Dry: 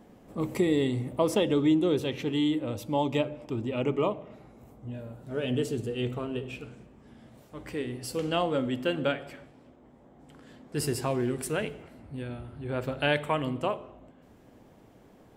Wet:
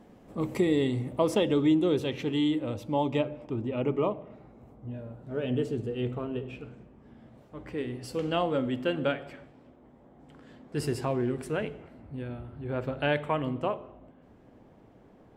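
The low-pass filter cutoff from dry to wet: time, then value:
low-pass filter 6 dB per octave
6,900 Hz
from 0:02.74 2,900 Hz
from 0:03.47 1,700 Hz
from 0:07.78 3,400 Hz
from 0:11.05 2,000 Hz

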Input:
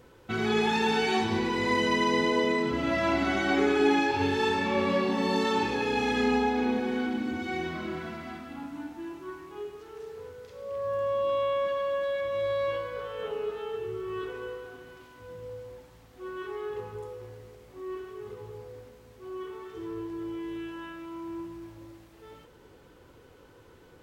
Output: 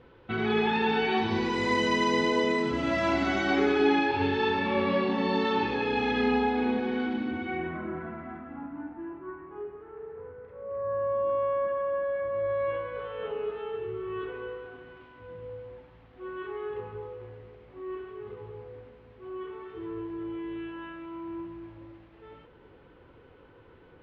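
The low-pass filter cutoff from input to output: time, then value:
low-pass filter 24 dB per octave
0:01.16 3,600 Hz
0:01.60 8,400 Hz
0:03.02 8,400 Hz
0:04.09 4,100 Hz
0:07.19 4,100 Hz
0:07.88 1,800 Hz
0:12.41 1,800 Hz
0:13.02 3,100 Hz

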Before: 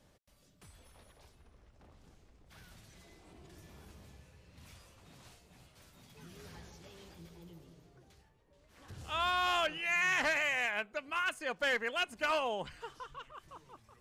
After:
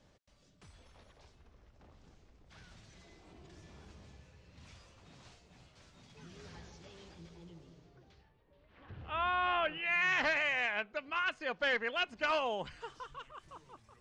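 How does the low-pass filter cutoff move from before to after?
low-pass filter 24 dB per octave
0:07.67 7,100 Hz
0:09.07 2,700 Hz
0:09.60 2,700 Hz
0:10.10 5,200 Hz
0:12.02 5,200 Hz
0:13.17 9,300 Hz

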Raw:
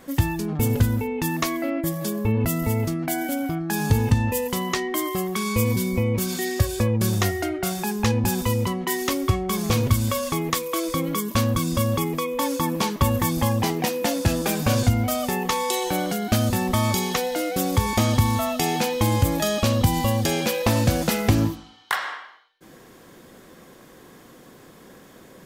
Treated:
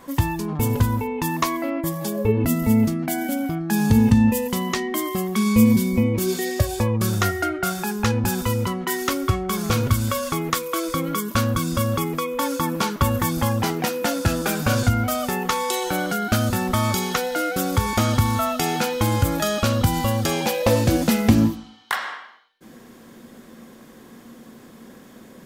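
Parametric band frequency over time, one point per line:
parametric band +13.5 dB 0.22 octaves
0:01.98 1,000 Hz
0:02.55 220 Hz
0:05.96 220 Hz
0:07.11 1,400 Hz
0:20.21 1,400 Hz
0:21.11 230 Hz

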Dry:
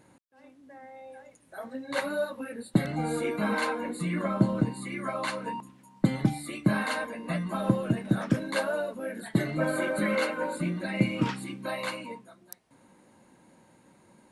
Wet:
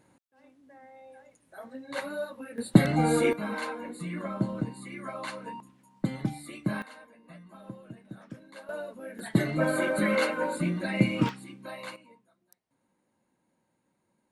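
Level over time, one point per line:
−4.5 dB
from 0:02.58 +6 dB
from 0:03.33 −5.5 dB
from 0:06.82 −18.5 dB
from 0:08.69 −6.5 dB
from 0:09.19 +1.5 dB
from 0:11.29 −7.5 dB
from 0:11.96 −16.5 dB

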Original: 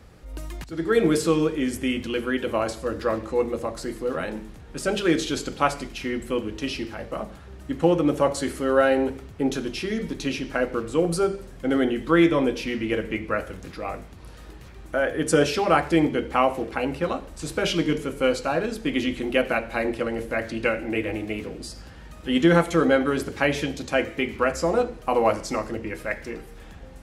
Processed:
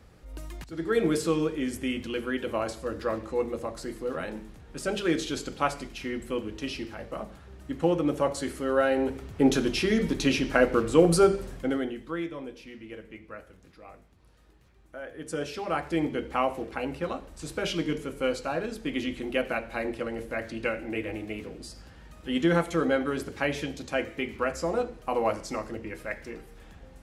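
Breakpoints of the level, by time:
0:08.92 −5 dB
0:09.45 +3 dB
0:11.53 +3 dB
0:11.78 −8 dB
0:12.29 −17 dB
0:14.99 −17 dB
0:16.15 −6 dB

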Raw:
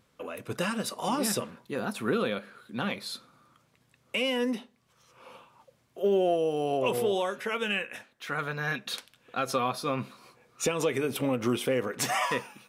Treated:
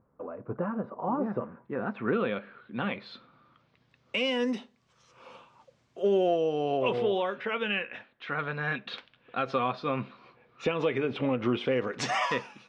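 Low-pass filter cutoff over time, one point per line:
low-pass filter 24 dB per octave
0:01.20 1,200 Hz
0:02.34 3,000 Hz
0:02.99 3,000 Hz
0:04.51 7,100 Hz
0:06.04 7,100 Hz
0:07.14 3,500 Hz
0:11.55 3,500 Hz
0:12.05 5,900 Hz

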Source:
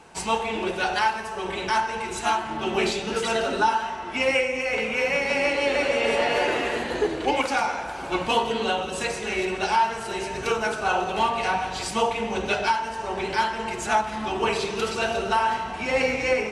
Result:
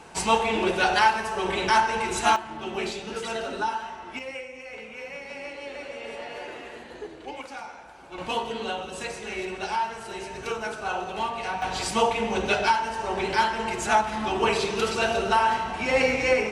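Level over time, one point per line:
+3 dB
from 0:02.36 −6.5 dB
from 0:04.19 −14.5 dB
from 0:08.18 −6 dB
from 0:11.62 +1 dB

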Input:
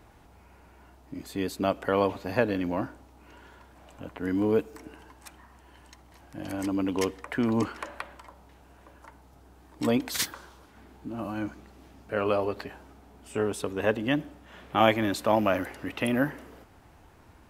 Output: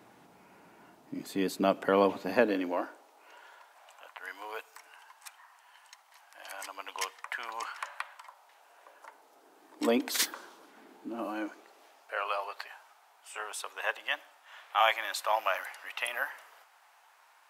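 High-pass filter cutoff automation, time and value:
high-pass filter 24 dB per octave
0:02.24 150 Hz
0:02.78 360 Hz
0:04.09 810 Hz
0:08.21 810 Hz
0:09.90 260 Hz
0:11.20 260 Hz
0:12.29 790 Hz

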